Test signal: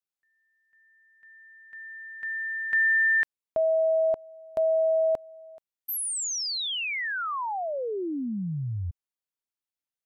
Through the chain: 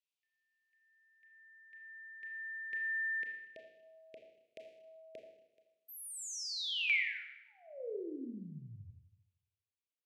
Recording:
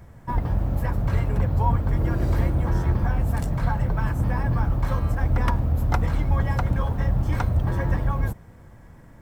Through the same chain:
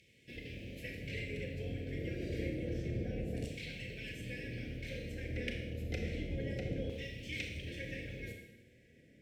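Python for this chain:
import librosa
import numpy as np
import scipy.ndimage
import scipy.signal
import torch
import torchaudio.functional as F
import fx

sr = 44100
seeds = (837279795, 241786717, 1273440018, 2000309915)

y = scipy.signal.sosfilt(scipy.signal.ellip(3, 1.0, 80, [470.0, 2400.0], 'bandstop', fs=sr, output='sos'), x)
y = fx.filter_lfo_bandpass(y, sr, shape='saw_down', hz=0.29, low_hz=900.0, high_hz=2800.0, q=1.4)
y = fx.rev_schroeder(y, sr, rt60_s=0.92, comb_ms=26, drr_db=2.0)
y = y * librosa.db_to_amplitude(5.0)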